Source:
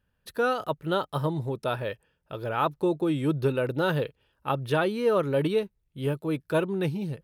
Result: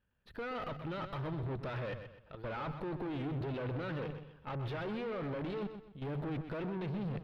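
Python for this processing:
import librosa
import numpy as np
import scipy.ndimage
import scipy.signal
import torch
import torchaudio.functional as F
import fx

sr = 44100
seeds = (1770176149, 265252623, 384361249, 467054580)

y = fx.high_shelf(x, sr, hz=2500.0, db=9.0)
y = fx.hum_notches(y, sr, base_hz=50, count=3)
y = fx.transient(y, sr, attack_db=0, sustain_db=12)
y = fx.level_steps(y, sr, step_db=16)
y = fx.tube_stage(y, sr, drive_db=40.0, bias=0.65)
y = fx.air_absorb(y, sr, metres=350.0)
y = fx.echo_feedback(y, sr, ms=127, feedback_pct=33, wet_db=-9.5)
y = y * 10.0 ** (4.0 / 20.0)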